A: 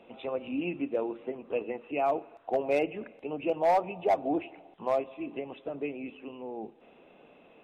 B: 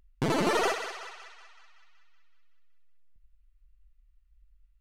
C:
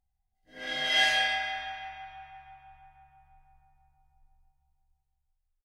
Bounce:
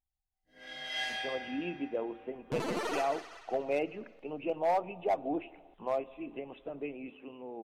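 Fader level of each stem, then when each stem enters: −4.5, −9.0, −11.5 decibels; 1.00, 2.30, 0.00 seconds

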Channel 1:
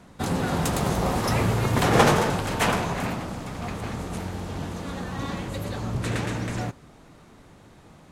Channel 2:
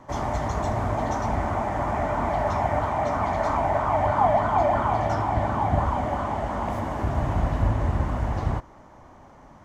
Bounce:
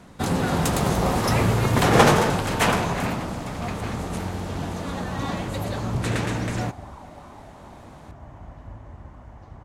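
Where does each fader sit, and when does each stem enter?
+2.5, −18.0 decibels; 0.00, 1.05 seconds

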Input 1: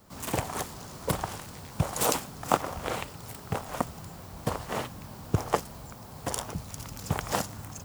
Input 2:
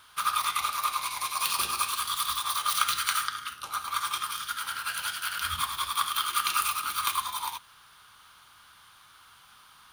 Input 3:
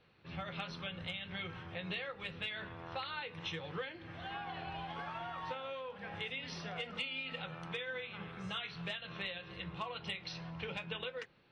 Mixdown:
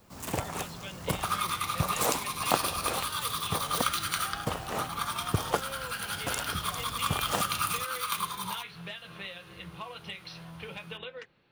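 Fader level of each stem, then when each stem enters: −2.5, −3.5, 0.0 decibels; 0.00, 1.05, 0.00 seconds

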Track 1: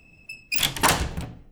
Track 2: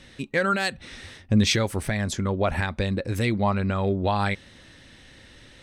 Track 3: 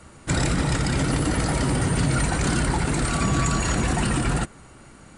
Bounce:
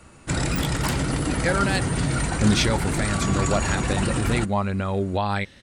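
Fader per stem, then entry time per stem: −10.5, −0.5, −2.0 decibels; 0.00, 1.10, 0.00 seconds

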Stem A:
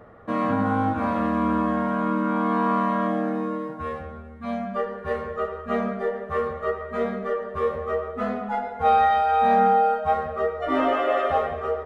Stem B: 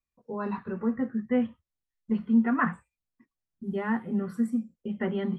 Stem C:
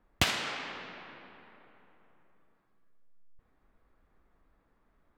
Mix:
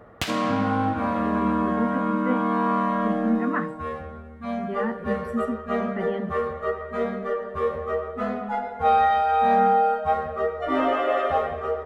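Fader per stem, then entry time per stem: −0.5, −1.5, −2.0 decibels; 0.00, 0.95, 0.00 seconds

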